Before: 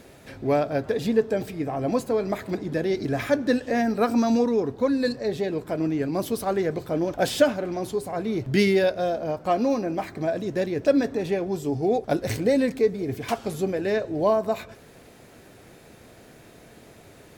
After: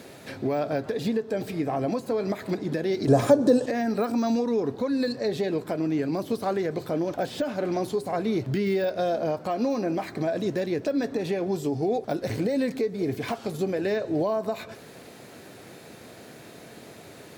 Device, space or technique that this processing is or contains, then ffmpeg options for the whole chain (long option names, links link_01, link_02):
broadcast voice chain: -filter_complex "[0:a]highpass=120,deesser=0.95,acompressor=threshold=-23dB:ratio=4,equalizer=frequency=4200:width_type=o:width=0.33:gain=3.5,alimiter=limit=-21.5dB:level=0:latency=1:release=238,asettb=1/sr,asplit=3[link_01][link_02][link_03];[link_01]atrim=end=3.074[link_04];[link_02]atrim=start=3.07:end=3.66,asetpts=PTS-STARTPTS,afade=type=in:duration=0.004:curve=qsin,afade=type=out:start_time=0.586:duration=0.004:curve=qsin,equalizer=frequency=125:width_type=o:width=1:gain=9,equalizer=frequency=250:width_type=o:width=1:gain=3,equalizer=frequency=500:width_type=o:width=1:gain=10,equalizer=frequency=1000:width_type=o:width=1:gain=7,equalizer=frequency=2000:width_type=o:width=1:gain=-9,equalizer=frequency=8000:width_type=o:width=1:gain=12[link_05];[link_03]atrim=start=3.656[link_06];[link_04][link_05]acrossfade=duration=0.004:curve1=hsin:curve2=qsin[link_07];[link_07][link_06]acrossfade=duration=0.004:curve1=qsin:curve2=hsin,volume=4dB"